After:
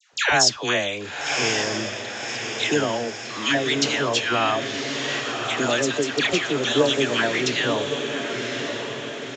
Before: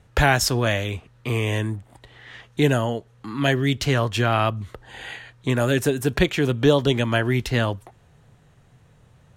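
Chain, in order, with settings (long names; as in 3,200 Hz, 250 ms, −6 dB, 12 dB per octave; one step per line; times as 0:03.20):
high-pass filter 260 Hz 12 dB per octave
high-shelf EQ 2,900 Hz +11 dB
in parallel at +2 dB: downward compressor, threshold −26 dBFS, peak gain reduction 15 dB
on the sum: all-pass dispersion lows, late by 134 ms, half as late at 1,100 Hz
on a send: feedback delay with all-pass diffusion 1,082 ms, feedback 54%, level −6 dB
on the sum: downsampling to 16,000 Hz
level −4.5 dB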